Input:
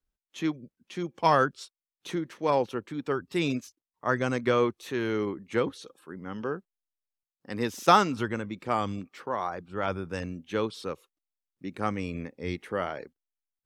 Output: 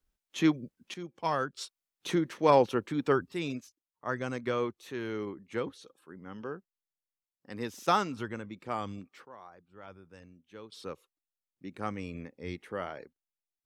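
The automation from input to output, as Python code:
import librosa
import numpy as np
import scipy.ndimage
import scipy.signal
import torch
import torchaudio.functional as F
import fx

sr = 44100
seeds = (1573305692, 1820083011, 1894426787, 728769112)

y = fx.gain(x, sr, db=fx.steps((0.0, 4.0), (0.94, -8.5), (1.57, 3.0), (3.31, -7.0), (9.25, -19.0), (10.72, -6.0)))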